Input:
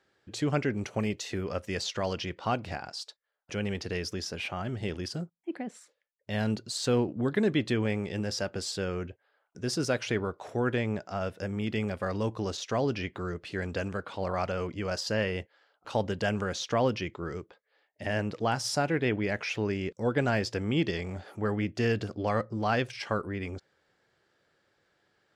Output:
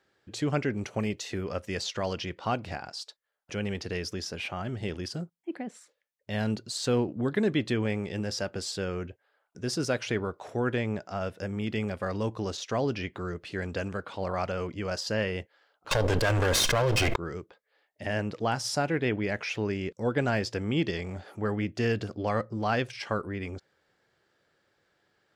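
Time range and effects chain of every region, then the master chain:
15.91–17.16 minimum comb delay 1.9 ms + fast leveller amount 100%
whole clip: dry

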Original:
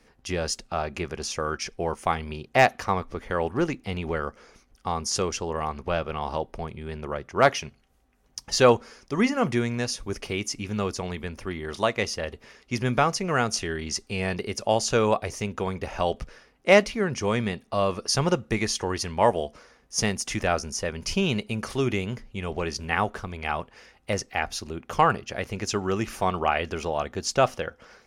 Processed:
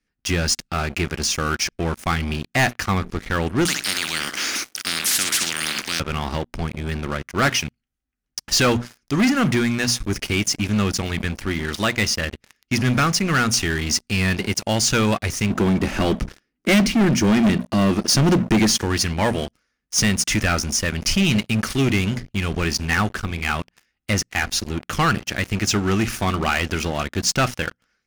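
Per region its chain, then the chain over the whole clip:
3.65–6 HPF 330 Hz 24 dB/oct + feedback echo 62 ms, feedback 17%, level -15 dB + spectral compressor 10:1
15.5–18.83 bell 180 Hz -4 dB 2.8 oct + small resonant body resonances 220/320 Hz, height 13 dB, ringing for 25 ms
whole clip: band shelf 660 Hz -10.5 dB; notches 60/120/180/240 Hz; sample leveller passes 5; gain -7 dB

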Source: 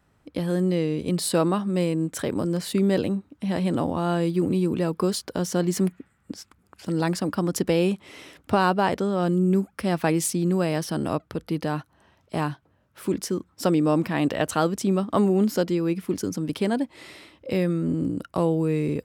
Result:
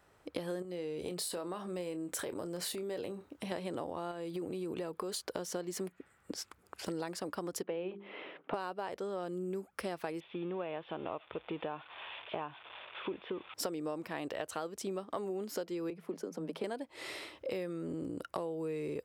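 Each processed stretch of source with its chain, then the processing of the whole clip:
0.62–3.52 high shelf 12000 Hz +5.5 dB + compressor 10:1, threshold -28 dBFS + doubler 28 ms -12 dB
4.11–5.22 notch 5300 Hz, Q 8.2 + compressor 5:1, threshold -25 dBFS
7.63–8.54 Chebyshev band-pass 170–3200 Hz, order 3 + air absorption 270 m + notches 50/100/150/200/250/300/350/400/450 Hz
10.2–13.54 switching spikes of -24.5 dBFS + rippled Chebyshev low-pass 3600 Hz, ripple 6 dB
15.9–16.64 rippled Chebyshev high-pass 160 Hz, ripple 6 dB + high shelf 2900 Hz -10 dB
whole clip: resonant low shelf 310 Hz -8 dB, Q 1.5; compressor 8:1, threshold -37 dBFS; gain +1.5 dB

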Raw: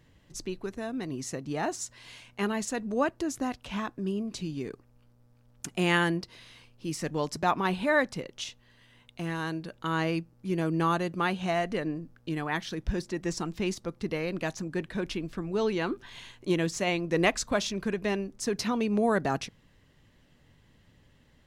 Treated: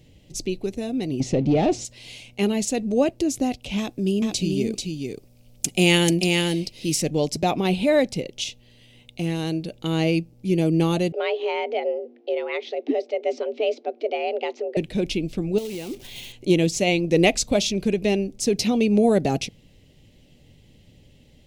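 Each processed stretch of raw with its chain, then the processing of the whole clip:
1.2–1.85 sample leveller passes 3 + tape spacing loss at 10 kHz 25 dB
3.78–7.02 high shelf 3400 Hz +7.5 dB + echo 0.439 s -4 dB
11.12–14.77 frequency shift +230 Hz + BPF 300–3000 Hz + air absorption 96 m
15.58–16.33 block floating point 3-bit + compressor 12:1, threshold -35 dBFS
whole clip: band shelf 1300 Hz -16 dB 1.2 oct; notch 680 Hz, Q 14; gain +8.5 dB

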